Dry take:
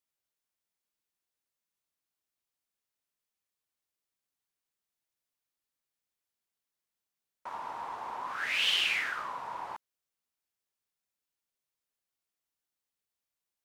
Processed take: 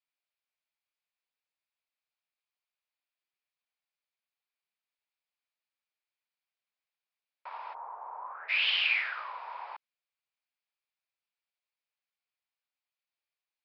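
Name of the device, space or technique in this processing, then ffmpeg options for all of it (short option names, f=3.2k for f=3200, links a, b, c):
musical greeting card: -filter_complex "[0:a]aresample=11025,aresample=44100,highpass=f=530:w=0.5412,highpass=f=530:w=1.3066,equalizer=f=2.4k:t=o:w=0.32:g=7.5,asplit=3[a][b][c];[a]afade=t=out:st=7.73:d=0.02[d];[b]lowpass=f=1.2k:w=0.5412,lowpass=f=1.2k:w=1.3066,afade=t=in:st=7.73:d=0.02,afade=t=out:st=8.48:d=0.02[e];[c]afade=t=in:st=8.48:d=0.02[f];[d][e][f]amix=inputs=3:normalize=0,volume=-2.5dB"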